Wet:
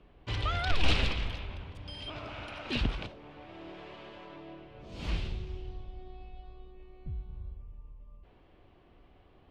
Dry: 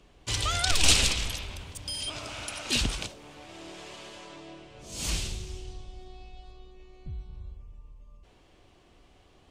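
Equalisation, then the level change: air absorption 370 m; 0.0 dB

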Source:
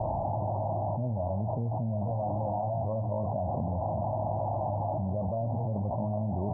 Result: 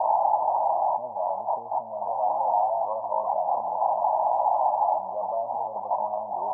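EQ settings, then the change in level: resonant high-pass 900 Hz, resonance Q 3.4; +5.0 dB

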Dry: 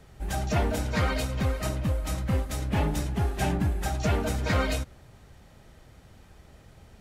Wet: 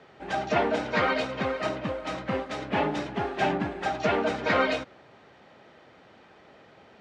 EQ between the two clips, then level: BPF 310–3700 Hz; air absorption 58 m; +6.0 dB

